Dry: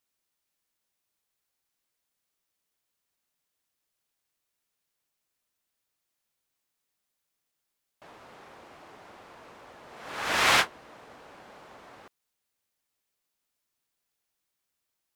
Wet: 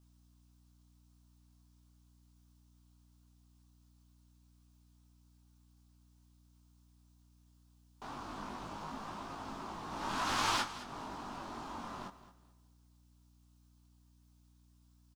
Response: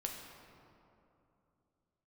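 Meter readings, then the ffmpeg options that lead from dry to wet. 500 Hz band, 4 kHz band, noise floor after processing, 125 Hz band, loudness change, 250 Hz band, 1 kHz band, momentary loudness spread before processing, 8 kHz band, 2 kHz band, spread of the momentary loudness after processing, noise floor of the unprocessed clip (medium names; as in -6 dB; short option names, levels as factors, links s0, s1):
-8.0 dB, -9.5 dB, -66 dBFS, +0.5 dB, -15.0 dB, +1.5 dB, -4.5 dB, 15 LU, -8.0 dB, -12.5 dB, 14 LU, -83 dBFS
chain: -filter_complex "[0:a]aeval=exprs='val(0)*sin(2*PI*180*n/s)':c=same,equalizer=f=250:t=o:w=1:g=7,equalizer=f=500:t=o:w=1:g=-11,equalizer=f=1000:t=o:w=1:g=6,equalizer=f=2000:t=o:w=1:g=-11,equalizer=f=16000:t=o:w=1:g=-7,flanger=delay=18.5:depth=2.9:speed=0.21,acompressor=threshold=0.00398:ratio=3,flanger=delay=2.3:depth=4.3:regen=-61:speed=0.86:shape=triangular,acontrast=80,equalizer=f=5500:w=1.5:g=2,aecho=1:1:216|432|648:0.178|0.0427|0.0102,aeval=exprs='val(0)+0.0002*(sin(2*PI*60*n/s)+sin(2*PI*2*60*n/s)/2+sin(2*PI*3*60*n/s)/3+sin(2*PI*4*60*n/s)/4+sin(2*PI*5*60*n/s)/5)':c=same,asplit=2[s0][s1];[1:a]atrim=start_sample=2205,asetrate=66150,aresample=44100[s2];[s1][s2]afir=irnorm=-1:irlink=0,volume=0.168[s3];[s0][s3]amix=inputs=2:normalize=0,volume=2.99"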